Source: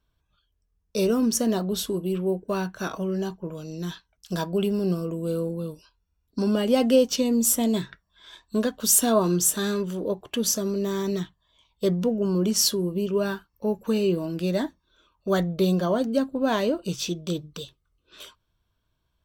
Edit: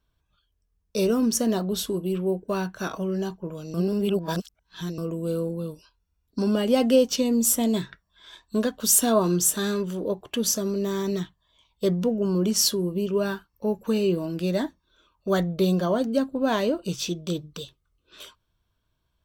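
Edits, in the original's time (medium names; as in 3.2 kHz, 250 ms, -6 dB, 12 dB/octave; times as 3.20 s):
3.74–4.98 s: reverse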